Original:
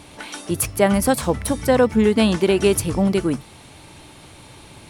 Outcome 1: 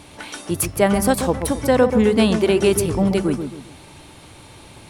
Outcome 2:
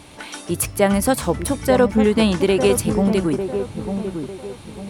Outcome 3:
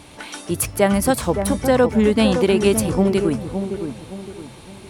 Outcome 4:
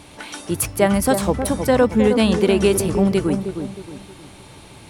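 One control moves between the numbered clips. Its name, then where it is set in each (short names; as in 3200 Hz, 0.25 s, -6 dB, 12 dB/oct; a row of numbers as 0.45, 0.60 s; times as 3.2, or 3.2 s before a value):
dark delay, time: 0.134, 0.9, 0.565, 0.313 s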